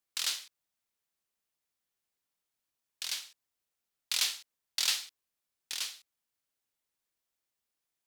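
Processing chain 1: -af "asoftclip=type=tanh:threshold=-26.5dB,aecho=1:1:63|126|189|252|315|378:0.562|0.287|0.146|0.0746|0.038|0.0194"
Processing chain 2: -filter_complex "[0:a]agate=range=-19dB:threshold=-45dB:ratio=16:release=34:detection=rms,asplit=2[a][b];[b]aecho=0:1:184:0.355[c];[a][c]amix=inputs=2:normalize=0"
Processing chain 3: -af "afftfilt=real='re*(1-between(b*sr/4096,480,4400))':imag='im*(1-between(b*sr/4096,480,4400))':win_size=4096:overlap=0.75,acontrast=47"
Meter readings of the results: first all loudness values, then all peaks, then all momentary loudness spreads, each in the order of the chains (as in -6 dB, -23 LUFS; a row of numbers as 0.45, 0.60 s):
-35.0, -33.0, -30.0 LUFS; -22.5, -13.5, -9.5 dBFS; 17, 17, 16 LU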